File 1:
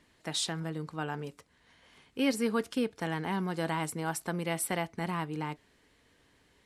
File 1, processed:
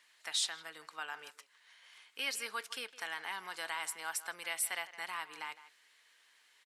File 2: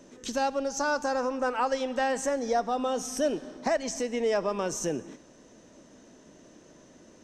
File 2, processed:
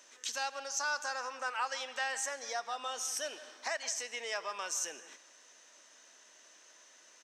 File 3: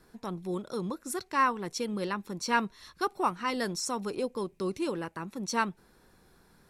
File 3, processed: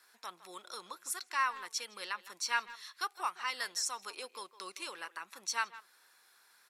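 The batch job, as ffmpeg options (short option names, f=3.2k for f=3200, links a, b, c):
-filter_complex "[0:a]highpass=1.4k,asplit=2[a][b];[b]acompressor=threshold=-43dB:ratio=6,volume=-2dB[c];[a][c]amix=inputs=2:normalize=0,asplit=2[d][e];[e]adelay=160,highpass=300,lowpass=3.4k,asoftclip=type=hard:threshold=-25dB,volume=-15dB[f];[d][f]amix=inputs=2:normalize=0,volume=-2dB"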